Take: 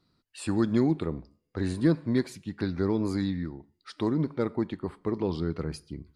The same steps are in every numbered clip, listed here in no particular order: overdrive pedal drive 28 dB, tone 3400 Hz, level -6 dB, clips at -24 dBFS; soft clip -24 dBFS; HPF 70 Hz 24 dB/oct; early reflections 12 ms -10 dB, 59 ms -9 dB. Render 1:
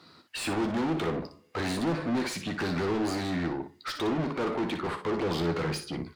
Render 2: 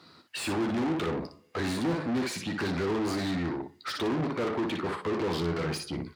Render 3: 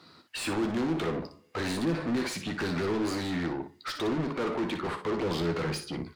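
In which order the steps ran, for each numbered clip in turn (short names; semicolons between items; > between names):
soft clip > HPF > overdrive pedal > early reflections; soft clip > early reflections > overdrive pedal > HPF; HPF > overdrive pedal > soft clip > early reflections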